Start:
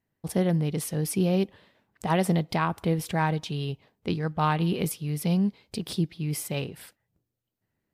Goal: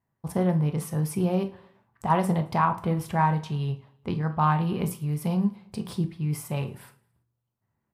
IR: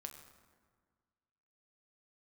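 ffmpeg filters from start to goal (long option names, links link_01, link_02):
-filter_complex "[0:a]equalizer=frequency=125:width_type=o:width=1:gain=11,equalizer=frequency=1000:width_type=o:width=1:gain=12,equalizer=frequency=4000:width_type=o:width=1:gain=-4,aecho=1:1:110|220|330:0.0708|0.0333|0.0156[link_01];[1:a]atrim=start_sample=2205,atrim=end_sample=3969[link_02];[link_01][link_02]afir=irnorm=-1:irlink=0"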